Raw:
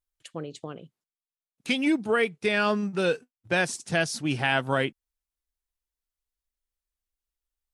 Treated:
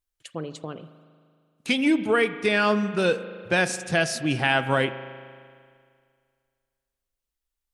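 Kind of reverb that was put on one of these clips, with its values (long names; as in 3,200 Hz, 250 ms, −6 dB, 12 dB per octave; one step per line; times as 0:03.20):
spring reverb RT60 2.1 s, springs 38 ms, chirp 50 ms, DRR 12 dB
level +2.5 dB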